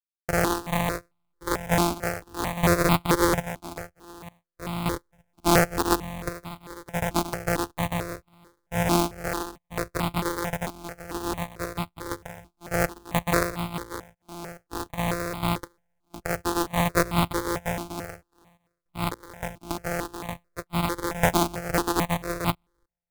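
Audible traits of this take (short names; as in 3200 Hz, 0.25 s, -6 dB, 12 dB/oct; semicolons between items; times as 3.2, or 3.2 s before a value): a buzz of ramps at a fixed pitch in blocks of 256 samples; random-step tremolo, depth 100%; aliases and images of a low sample rate 2900 Hz, jitter 20%; notches that jump at a steady rate 4.5 Hz 490–1700 Hz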